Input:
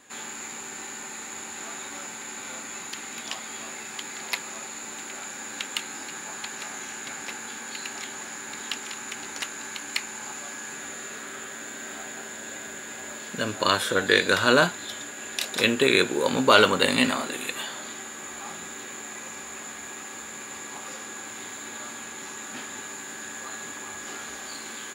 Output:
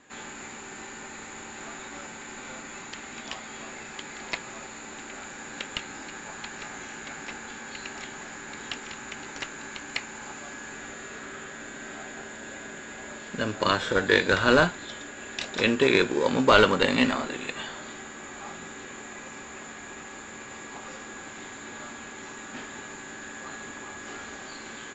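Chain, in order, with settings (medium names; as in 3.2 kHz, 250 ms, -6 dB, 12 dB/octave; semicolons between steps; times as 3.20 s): treble shelf 4.6 kHz -10 dB; in parallel at -12 dB: sample-rate reducer 1.4 kHz, jitter 0%; on the sum: Chebyshev low-pass 7.7 kHz, order 6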